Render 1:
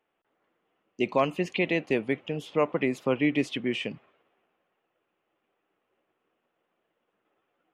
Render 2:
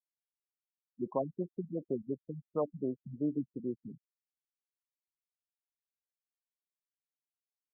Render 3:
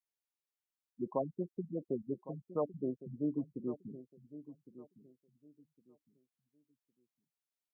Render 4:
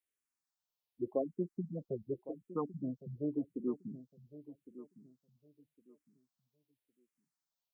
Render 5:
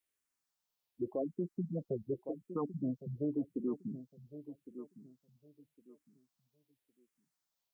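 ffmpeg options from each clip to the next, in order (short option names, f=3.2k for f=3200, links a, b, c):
-af "afftfilt=real='re*gte(hypot(re,im),0.0316)':imag='im*gte(hypot(re,im),0.0316)':win_size=1024:overlap=0.75,afftfilt=real='re*lt(b*sr/1024,210*pow(1500/210,0.5+0.5*sin(2*PI*2.8*pts/sr)))':imag='im*lt(b*sr/1024,210*pow(1500/210,0.5+0.5*sin(2*PI*2.8*pts/sr)))':win_size=1024:overlap=0.75,volume=-7.5dB"
-af "aecho=1:1:1109|2218|3327:0.178|0.0427|0.0102,volume=-1.5dB"
-filter_complex "[0:a]asplit=2[a][b];[b]afreqshift=-0.87[c];[a][c]amix=inputs=2:normalize=1,volume=3.5dB"
-af "alimiter=level_in=6.5dB:limit=-24dB:level=0:latency=1:release=20,volume=-6.5dB,volume=3.5dB"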